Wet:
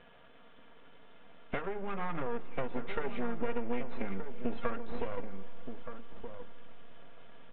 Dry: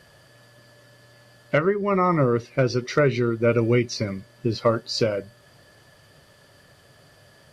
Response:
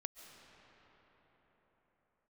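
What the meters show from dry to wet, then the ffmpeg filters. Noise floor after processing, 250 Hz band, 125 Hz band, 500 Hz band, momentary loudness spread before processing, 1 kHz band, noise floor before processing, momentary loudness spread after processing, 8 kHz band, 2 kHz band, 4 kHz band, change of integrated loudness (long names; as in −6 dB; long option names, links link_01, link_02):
−55 dBFS, −14.5 dB, −21.0 dB, −16.0 dB, 9 LU, −12.5 dB, −55 dBFS, 22 LU, below −40 dB, −13.5 dB, −20.5 dB, −16.5 dB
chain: -filter_complex "[0:a]lowshelf=frequency=130:gain=-9.5,bandreject=frequency=1800:width=6.5,aecho=1:1:4.3:0.93,acompressor=threshold=-30dB:ratio=6,aeval=exprs='max(val(0),0)':channel_layout=same,asplit=2[link_01][link_02];[link_02]adelay=1224,volume=-8dB,highshelf=frequency=4000:gain=-27.6[link_03];[link_01][link_03]amix=inputs=2:normalize=0,asplit=2[link_04][link_05];[1:a]atrim=start_sample=2205,asetrate=52920,aresample=44100,lowpass=frequency=4500:width=0.5412,lowpass=frequency=4500:width=1.3066[link_06];[link_05][link_06]afir=irnorm=-1:irlink=0,volume=-3.5dB[link_07];[link_04][link_07]amix=inputs=2:normalize=0,aresample=8000,aresample=44100,volume=-2dB"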